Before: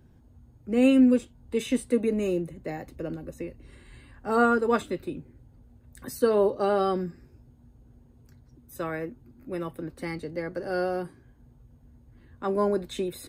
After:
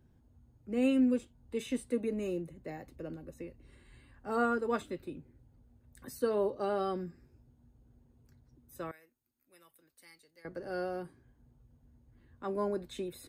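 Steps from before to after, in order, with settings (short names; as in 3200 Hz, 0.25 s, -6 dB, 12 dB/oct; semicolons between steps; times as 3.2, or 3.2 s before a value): 8.91–10.45 pre-emphasis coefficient 0.97; gain -8.5 dB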